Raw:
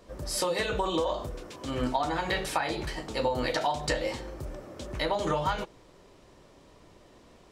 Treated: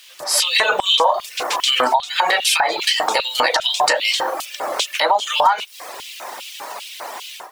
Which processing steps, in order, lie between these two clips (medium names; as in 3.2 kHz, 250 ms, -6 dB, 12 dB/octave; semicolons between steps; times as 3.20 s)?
added noise pink -57 dBFS; level rider gain up to 12 dB; LFO high-pass square 2.5 Hz 820–2900 Hz; compression 4:1, threshold -25 dBFS, peak gain reduction 16.5 dB; reverb removal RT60 0.81 s; loudness maximiser +16.5 dB; trim -4 dB